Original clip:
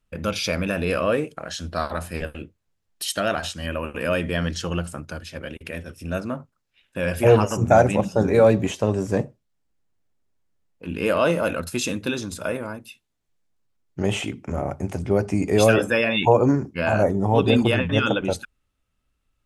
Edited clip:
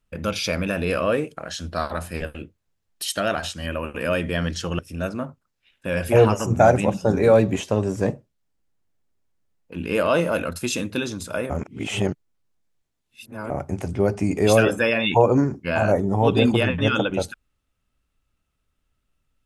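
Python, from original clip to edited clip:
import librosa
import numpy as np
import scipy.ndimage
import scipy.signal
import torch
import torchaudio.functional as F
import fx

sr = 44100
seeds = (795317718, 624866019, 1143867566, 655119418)

y = fx.edit(x, sr, fx.cut(start_s=4.79, length_s=1.11),
    fx.reverse_span(start_s=12.61, length_s=2.0), tone=tone)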